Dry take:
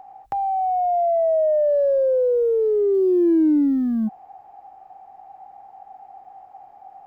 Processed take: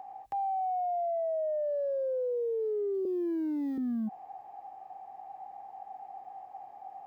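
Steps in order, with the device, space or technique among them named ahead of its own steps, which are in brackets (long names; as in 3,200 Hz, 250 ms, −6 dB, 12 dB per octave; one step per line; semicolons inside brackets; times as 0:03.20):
0:03.05–0:03.78: high-pass filter 370 Hz 24 dB per octave
PA system with an anti-feedback notch (high-pass filter 140 Hz 6 dB per octave; Butterworth band-reject 1,400 Hz, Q 7; brickwall limiter −26 dBFS, peak gain reduction 11.5 dB)
level −2 dB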